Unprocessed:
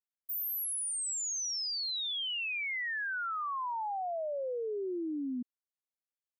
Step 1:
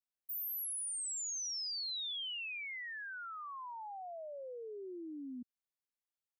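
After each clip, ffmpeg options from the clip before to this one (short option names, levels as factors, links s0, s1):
-filter_complex "[0:a]acrossover=split=160|3000[s0][s1][s2];[s1]acompressor=threshold=0.00562:ratio=2[s3];[s0][s3][s2]amix=inputs=3:normalize=0,volume=0.596"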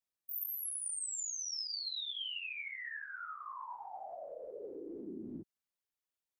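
-af "afftfilt=real='hypot(re,im)*cos(2*PI*random(0))':imag='hypot(re,im)*sin(2*PI*random(1))':win_size=512:overlap=0.75,volume=2"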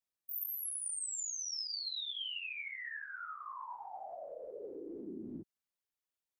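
-af anull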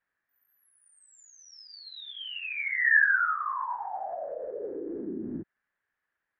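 -af "lowpass=f=1700:t=q:w=6.3,volume=2.82"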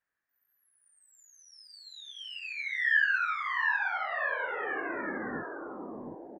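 -af "aecho=1:1:720|1296|1757|2125|2420:0.631|0.398|0.251|0.158|0.1,volume=0.631"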